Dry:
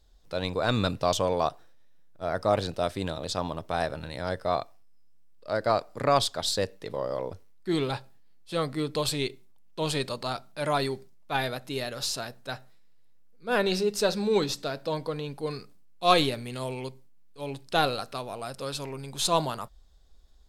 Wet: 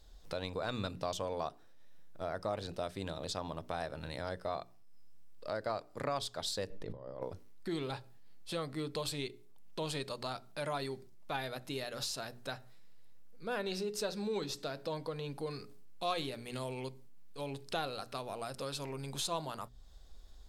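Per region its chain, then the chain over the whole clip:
6.70–7.22 s: tilt EQ -2.5 dB/octave + compressor with a negative ratio -36 dBFS, ratio -0.5
whole clip: hum notches 60/120/180/240/300/360/420 Hz; compression 2.5:1, threshold -46 dBFS; trim +4 dB

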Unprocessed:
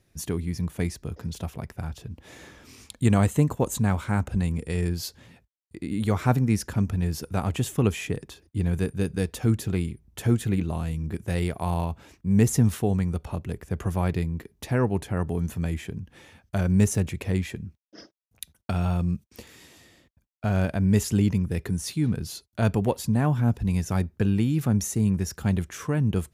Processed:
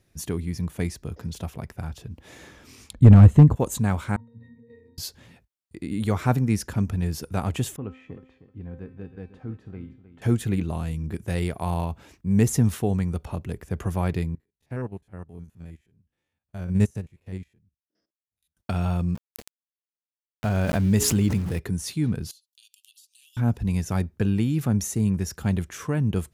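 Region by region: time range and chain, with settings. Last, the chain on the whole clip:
2.93–3.56 s: RIAA curve playback + hard clipper -4.5 dBFS
4.16–4.98 s: high-pass 120 Hz 24 dB/octave + pitch-class resonator A#, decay 0.56 s
7.76–10.22 s: low-pass 1.7 kHz + feedback comb 260 Hz, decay 0.53 s, mix 80% + feedback delay 311 ms, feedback 19%, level -13.5 dB
14.35–18.57 s: spectrogram pixelated in time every 50 ms + bass shelf 160 Hz +3 dB + upward expansion 2.5:1, over -35 dBFS
19.15–21.59 s: hum notches 60/120/180/240/300/360/420 Hz + small samples zeroed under -38.5 dBFS + swell ahead of each attack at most 26 dB/s
22.31–23.37 s: Chebyshev high-pass 2.8 kHz, order 6 + compression 16:1, threshold -50 dBFS
whole clip: none

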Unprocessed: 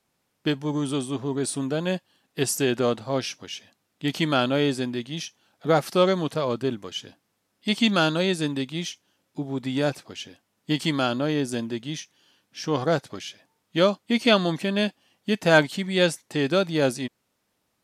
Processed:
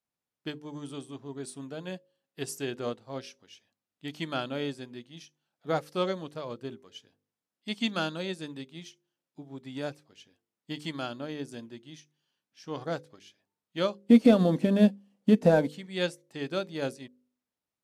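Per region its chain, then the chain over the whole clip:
13.98–15.69 s: CVSD coder 64 kbps + compression 4:1, threshold -23 dBFS + small resonant body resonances 230/480 Hz, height 16 dB, ringing for 20 ms
whole clip: de-hum 49.91 Hz, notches 11; upward expansion 1.5:1, over -38 dBFS; trim -4 dB

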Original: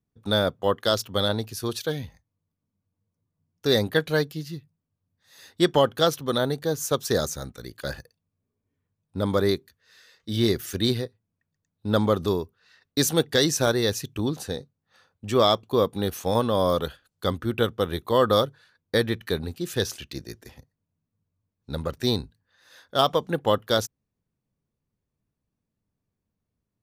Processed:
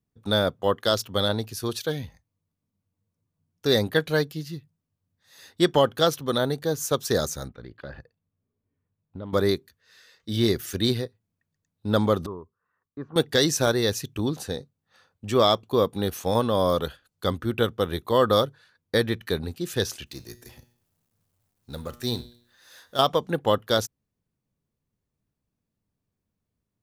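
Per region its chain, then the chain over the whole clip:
7.48–9.33 s: distance through air 360 m + compression 3:1, threshold -35 dBFS + loudspeaker Doppler distortion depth 0.13 ms
12.26–13.16 s: four-pole ladder low-pass 1.2 kHz, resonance 70% + peaking EQ 830 Hz -8 dB 1.1 oct
20.06–22.99 s: companding laws mixed up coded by mu + treble shelf 5.4 kHz +8 dB + feedback comb 120 Hz, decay 0.58 s
whole clip: none

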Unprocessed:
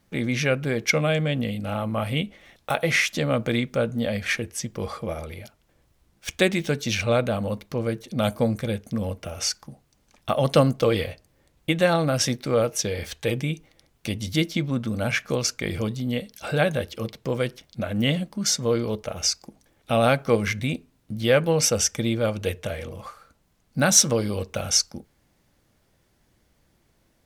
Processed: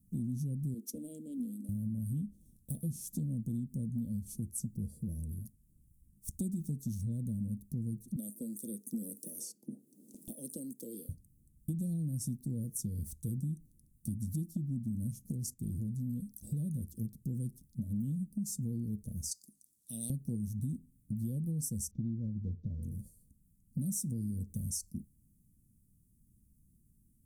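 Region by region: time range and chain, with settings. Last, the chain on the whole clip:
0.74–1.69 s: steep high-pass 240 Hz 48 dB/octave + loudspeaker Doppler distortion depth 0.11 ms
8.16–11.09 s: high-pass 330 Hz 24 dB/octave + band-stop 700 Hz, Q 13 + three bands compressed up and down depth 100%
15.32–16.20 s: gate -39 dBFS, range -9 dB + transformer saturation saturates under 840 Hz
19.31–20.10 s: high-pass 1.2 kHz 6 dB/octave + peaking EQ 4.1 kHz +14 dB 2.3 oct
21.91–22.83 s: CVSD coder 32 kbps + low-pass 2.2 kHz
whole clip: Chebyshev band-stop 220–9100 Hz, order 3; compression, threshold -33 dBFS

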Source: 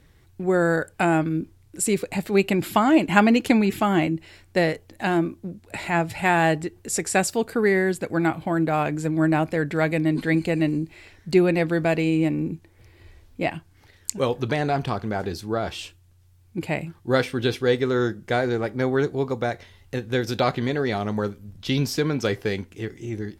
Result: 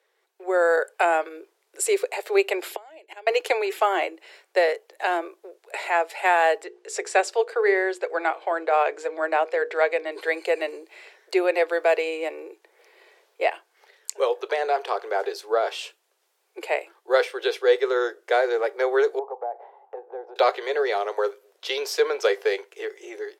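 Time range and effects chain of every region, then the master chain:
2.72–3.27 s: peaking EQ 1.2 kHz -12.5 dB 0.6 oct + inverted gate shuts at -15 dBFS, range -24 dB
6.64–10.12 s: low-pass 6.4 kHz + hum notches 60/120/180/240/300/360/420/480 Hz
19.19–20.36 s: resonant low-pass 810 Hz, resonance Q 7.6 + compression 2.5:1, threshold -40 dBFS
whole clip: steep high-pass 400 Hz 72 dB/octave; tilt EQ -1.5 dB/octave; level rider gain up to 10.5 dB; trim -6 dB

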